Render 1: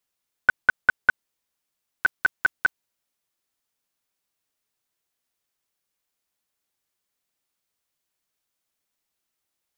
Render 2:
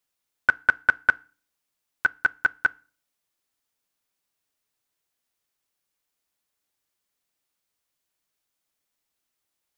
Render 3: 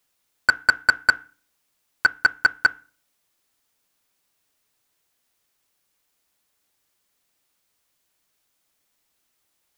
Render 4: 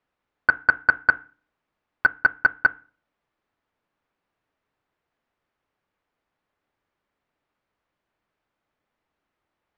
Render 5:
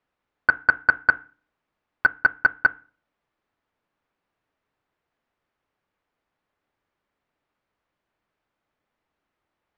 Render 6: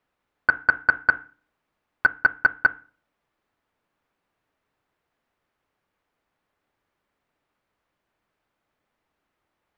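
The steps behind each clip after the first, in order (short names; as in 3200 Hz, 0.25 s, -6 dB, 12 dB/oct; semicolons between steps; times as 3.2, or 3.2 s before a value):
FDN reverb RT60 0.37 s, low-frequency decay 1.3×, high-frequency decay 0.95×, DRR 19 dB
soft clip -16 dBFS, distortion -12 dB; gain +8.5 dB
LPF 1700 Hz 12 dB/oct; gain +1.5 dB
nothing audible
limiter -10 dBFS, peak gain reduction 3.5 dB; gain +2.5 dB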